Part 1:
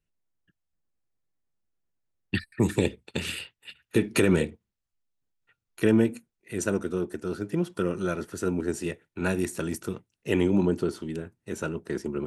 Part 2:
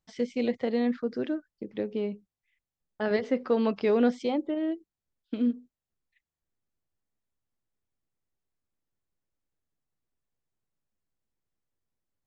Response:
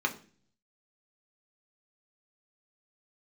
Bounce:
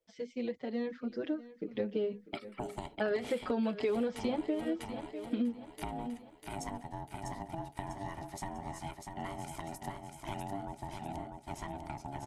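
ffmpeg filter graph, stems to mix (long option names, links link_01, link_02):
-filter_complex "[0:a]acompressor=threshold=-33dB:ratio=6,aeval=exprs='val(0)*sin(2*PI*490*n/s)':channel_layout=same,volume=-2.5dB,asplit=2[link_01][link_02];[link_02]volume=-5dB[link_03];[1:a]dynaudnorm=framelen=180:gausssize=17:maxgain=15dB,asplit=2[link_04][link_05];[link_05]adelay=5.2,afreqshift=-2.8[link_06];[link_04][link_06]amix=inputs=2:normalize=1,volume=-7dB,asplit=2[link_07][link_08];[link_08]volume=-17.5dB[link_09];[link_03][link_09]amix=inputs=2:normalize=0,aecho=0:1:647|1294|1941|2588|3235|3882:1|0.43|0.185|0.0795|0.0342|0.0147[link_10];[link_01][link_07][link_10]amix=inputs=3:normalize=0,acompressor=threshold=-29dB:ratio=10"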